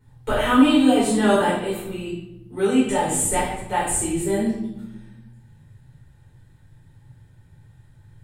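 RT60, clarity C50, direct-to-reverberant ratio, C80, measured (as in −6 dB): 0.95 s, 1.5 dB, −9.5 dB, 5.0 dB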